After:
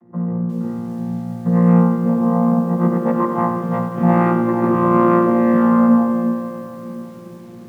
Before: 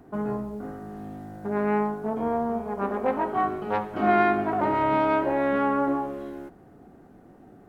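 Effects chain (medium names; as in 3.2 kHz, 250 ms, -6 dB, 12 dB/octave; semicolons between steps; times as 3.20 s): vocoder on a held chord bare fifth, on A#2; level rider gain up to 9.5 dB; small resonant body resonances 210/1100/1900 Hz, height 10 dB, ringing for 20 ms; on a send: two-band feedback delay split 490 Hz, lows 351 ms, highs 91 ms, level -8.5 dB; on the sum: bit-crushed delay 357 ms, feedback 55%, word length 6-bit, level -13 dB; trim -5 dB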